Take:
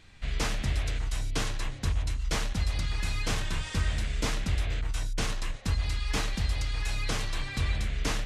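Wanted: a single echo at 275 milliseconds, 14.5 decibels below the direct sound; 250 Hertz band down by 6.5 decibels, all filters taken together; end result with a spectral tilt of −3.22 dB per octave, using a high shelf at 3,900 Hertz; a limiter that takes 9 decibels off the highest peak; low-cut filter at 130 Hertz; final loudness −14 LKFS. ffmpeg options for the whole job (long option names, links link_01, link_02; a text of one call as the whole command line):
ffmpeg -i in.wav -af "highpass=130,equalizer=frequency=250:width_type=o:gain=-8.5,highshelf=frequency=3900:gain=7,alimiter=level_in=2dB:limit=-24dB:level=0:latency=1,volume=-2dB,aecho=1:1:275:0.188,volume=21.5dB" out.wav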